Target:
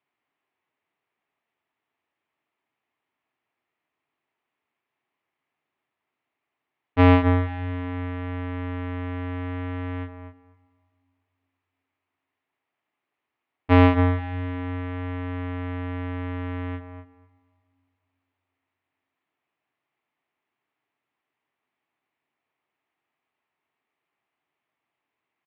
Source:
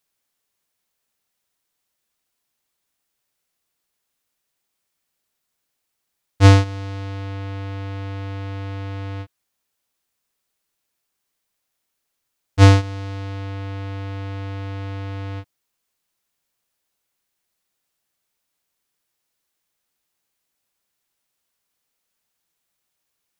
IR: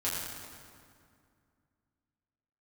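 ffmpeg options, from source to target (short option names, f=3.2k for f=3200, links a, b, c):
-filter_complex "[0:a]asplit=2[a][b];[b]adelay=225,lowpass=f=1.9k:p=1,volume=-8dB,asplit=2[c][d];[d]adelay=225,lowpass=f=1.9k:p=1,volume=0.16,asplit=2[e][f];[f]adelay=225,lowpass=f=1.9k:p=1,volume=0.16[g];[a][c][e][g]amix=inputs=4:normalize=0,asplit=2[h][i];[1:a]atrim=start_sample=2205,asetrate=48510,aresample=44100[j];[i][j]afir=irnorm=-1:irlink=0,volume=-23.5dB[k];[h][k]amix=inputs=2:normalize=0,asetrate=40517,aresample=44100,highpass=160,equalizer=f=190:t=q:w=4:g=-9,equalizer=f=520:t=q:w=4:g=-8,equalizer=f=1.5k:t=q:w=4:g=-7,lowpass=f=2.4k:w=0.5412,lowpass=f=2.4k:w=1.3066,alimiter=level_in=5dB:limit=-1dB:release=50:level=0:latency=1,volume=-1.5dB"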